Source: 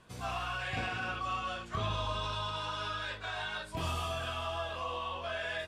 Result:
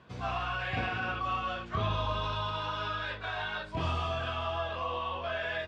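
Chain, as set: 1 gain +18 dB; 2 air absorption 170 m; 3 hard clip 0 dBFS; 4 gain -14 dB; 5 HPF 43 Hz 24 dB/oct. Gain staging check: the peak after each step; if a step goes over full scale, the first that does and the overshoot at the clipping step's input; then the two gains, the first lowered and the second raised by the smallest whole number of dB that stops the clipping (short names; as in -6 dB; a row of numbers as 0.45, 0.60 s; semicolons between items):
-4.0, -5.0, -5.0, -19.0, -19.5 dBFS; no overload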